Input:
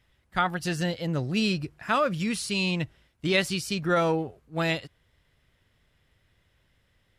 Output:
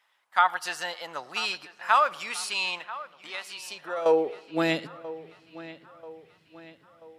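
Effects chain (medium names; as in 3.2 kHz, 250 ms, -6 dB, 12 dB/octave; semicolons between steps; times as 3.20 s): 2.78–4.06 s: compression 4:1, threshold -34 dBFS, peak gain reduction 13.5 dB; high-pass sweep 920 Hz -> 170 Hz, 3.53–5.11 s; feedback echo behind a low-pass 986 ms, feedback 49%, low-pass 3.7 kHz, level -16.5 dB; on a send at -21 dB: reverberation RT60 2.8 s, pre-delay 80 ms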